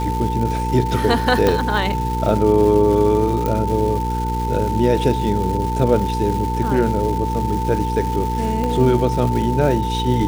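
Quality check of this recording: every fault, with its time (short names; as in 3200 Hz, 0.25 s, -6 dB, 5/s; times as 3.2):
crackle 530/s -26 dBFS
hum 60 Hz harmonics 8 -23 dBFS
tone 890 Hz -23 dBFS
1.47 pop -4 dBFS
3.46 pop -9 dBFS
8.64 pop -11 dBFS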